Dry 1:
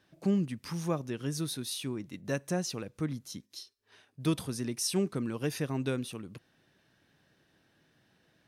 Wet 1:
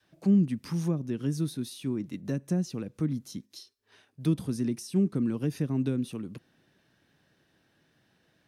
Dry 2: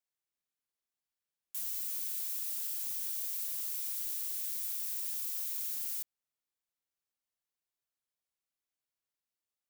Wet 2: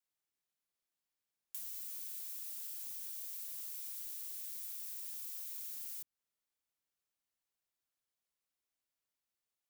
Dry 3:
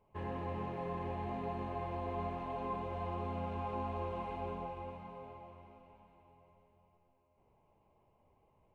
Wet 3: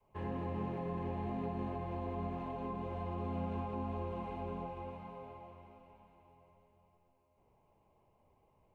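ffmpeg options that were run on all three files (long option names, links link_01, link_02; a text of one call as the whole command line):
ffmpeg -i in.wav -filter_complex "[0:a]acrossover=split=320[link_01][link_02];[link_02]acompressor=threshold=-42dB:ratio=5[link_03];[link_01][link_03]amix=inputs=2:normalize=0,adynamicequalizer=threshold=0.00501:dfrequency=230:dqfactor=0.74:tfrequency=230:tqfactor=0.74:attack=5:release=100:ratio=0.375:range=4:mode=boostabove:tftype=bell" out.wav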